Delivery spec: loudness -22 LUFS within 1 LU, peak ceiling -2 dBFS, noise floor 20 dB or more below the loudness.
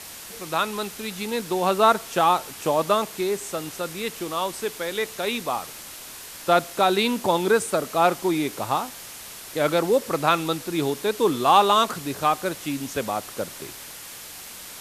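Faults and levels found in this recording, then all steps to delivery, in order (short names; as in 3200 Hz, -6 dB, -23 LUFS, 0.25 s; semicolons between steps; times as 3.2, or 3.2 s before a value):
noise floor -40 dBFS; noise floor target -44 dBFS; loudness -23.5 LUFS; peak -4.0 dBFS; loudness target -22.0 LUFS
-> denoiser 6 dB, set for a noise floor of -40 dBFS; gain +1.5 dB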